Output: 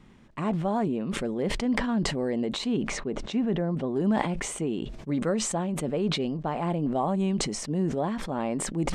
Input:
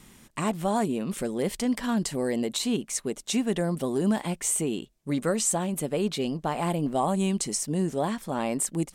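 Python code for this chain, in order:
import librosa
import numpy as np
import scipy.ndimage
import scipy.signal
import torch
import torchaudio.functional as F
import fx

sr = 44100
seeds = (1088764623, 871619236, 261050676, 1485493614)

y = fx.spacing_loss(x, sr, db_at_10k=fx.steps((0.0, 26.0), (2.88, 39.0), (3.95, 24.0)))
y = fx.sustainer(y, sr, db_per_s=41.0)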